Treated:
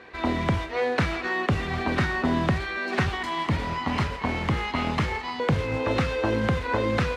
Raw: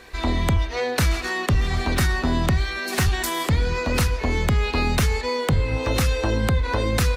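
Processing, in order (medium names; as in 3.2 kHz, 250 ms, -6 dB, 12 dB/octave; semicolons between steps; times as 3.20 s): 3.12–5.40 s: comb filter that takes the minimum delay 0.98 ms; modulation noise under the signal 13 dB; band-pass 120–2600 Hz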